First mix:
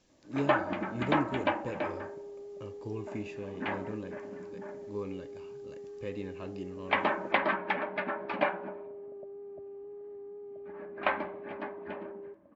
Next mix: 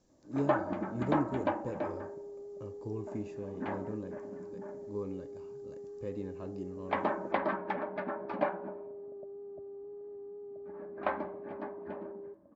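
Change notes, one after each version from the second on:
master: add peaking EQ 2.7 kHz -14 dB 1.6 oct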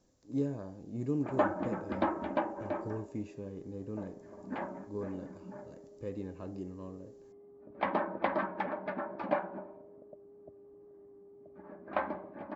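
first sound: entry +0.90 s; second sound -10.5 dB

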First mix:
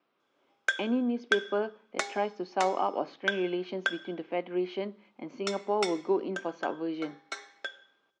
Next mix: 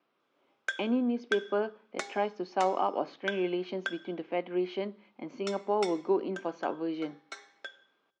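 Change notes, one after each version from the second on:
background -5.5 dB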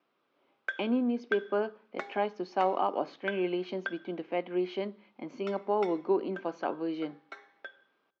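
background: add low-pass 2.2 kHz 12 dB/octave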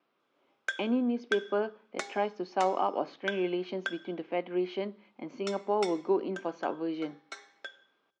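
background: remove low-pass 2.2 kHz 12 dB/octave

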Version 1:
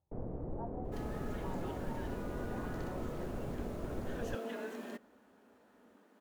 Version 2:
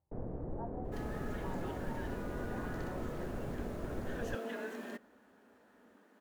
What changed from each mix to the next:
master: add peaking EQ 1.7 kHz +4.5 dB 0.44 oct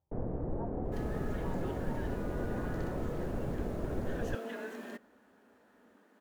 first sound +5.0 dB

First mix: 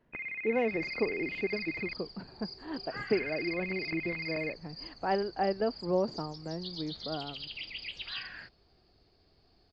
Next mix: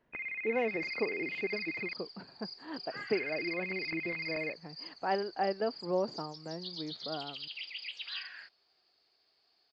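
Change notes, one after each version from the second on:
second sound: add high-pass 1.4 kHz 6 dB/octave; master: add bass shelf 320 Hz -7.5 dB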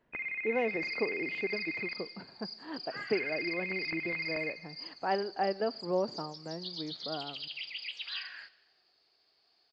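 reverb: on, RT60 1.2 s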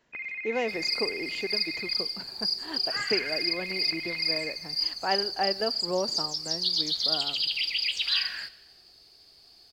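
first sound -6.5 dB; second sound: remove high-pass 1.4 kHz 6 dB/octave; master: remove tape spacing loss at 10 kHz 34 dB

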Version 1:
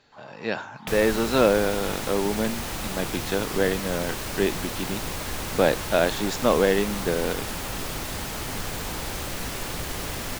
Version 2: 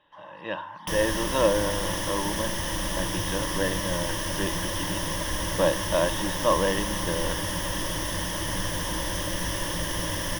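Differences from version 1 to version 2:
speech: add rippled Chebyshev low-pass 3.9 kHz, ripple 9 dB; master: add rippled EQ curve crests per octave 1.2, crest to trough 13 dB

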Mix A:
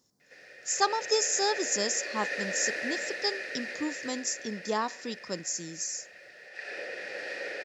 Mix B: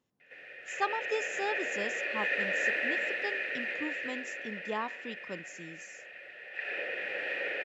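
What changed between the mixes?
speech -5.5 dB; master: add resonant high shelf 3.8 kHz -10 dB, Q 3

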